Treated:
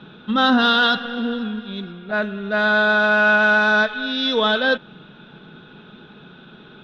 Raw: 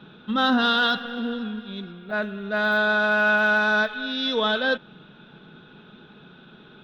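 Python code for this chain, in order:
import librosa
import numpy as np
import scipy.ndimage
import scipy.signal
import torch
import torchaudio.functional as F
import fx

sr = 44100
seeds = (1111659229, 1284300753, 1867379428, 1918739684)

y = scipy.signal.sosfilt(scipy.signal.butter(2, 8900.0, 'lowpass', fs=sr, output='sos'), x)
y = y * 10.0 ** (4.5 / 20.0)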